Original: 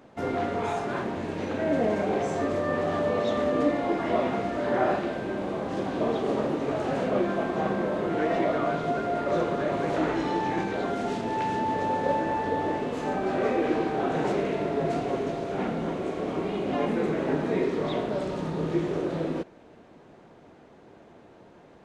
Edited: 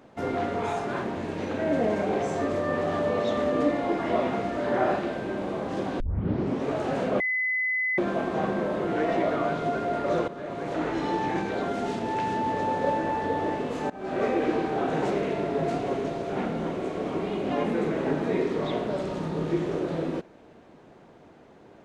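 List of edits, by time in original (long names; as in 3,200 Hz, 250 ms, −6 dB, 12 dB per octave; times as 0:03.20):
0:06.00: tape start 0.65 s
0:07.20: insert tone 2,020 Hz −23.5 dBFS 0.78 s
0:09.50–0:10.32: fade in linear, from −12.5 dB
0:13.12–0:13.45: fade in, from −22 dB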